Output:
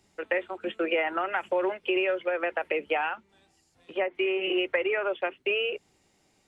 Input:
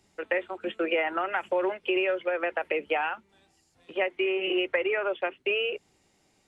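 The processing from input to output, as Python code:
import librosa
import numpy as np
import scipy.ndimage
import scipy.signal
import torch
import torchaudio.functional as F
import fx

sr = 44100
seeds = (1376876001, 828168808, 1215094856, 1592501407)

y = fx.env_lowpass_down(x, sr, base_hz=1800.0, full_db=-23.0, at=(3.09, 4.15))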